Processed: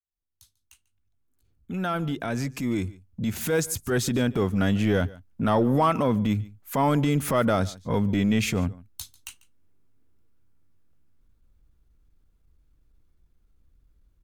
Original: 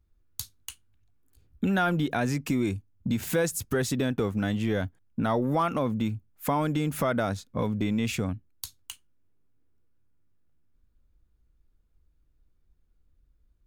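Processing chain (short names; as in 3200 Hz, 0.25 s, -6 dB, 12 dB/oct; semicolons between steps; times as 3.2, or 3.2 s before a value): opening faded in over 4.47 s; transient shaper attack -7 dB, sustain -1 dB; in parallel at -11.5 dB: overloaded stage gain 23.5 dB; on the sum: echo 0.138 s -21.5 dB; speed mistake 25 fps video run at 24 fps; gain +3.5 dB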